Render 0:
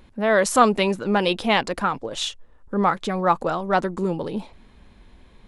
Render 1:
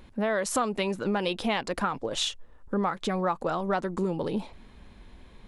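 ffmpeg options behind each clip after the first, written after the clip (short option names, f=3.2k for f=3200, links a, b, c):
-af "acompressor=threshold=-24dB:ratio=6"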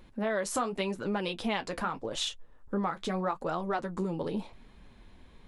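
-af "flanger=delay=5.5:depth=7.6:regen=-46:speed=0.84:shape=triangular"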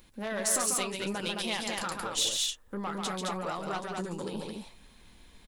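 -af "aeval=exprs='(tanh(12.6*val(0)+0.25)-tanh(0.25))/12.6':c=same,crystalizer=i=5:c=0,aecho=1:1:139.9|215.7:0.562|0.708,volume=-5dB"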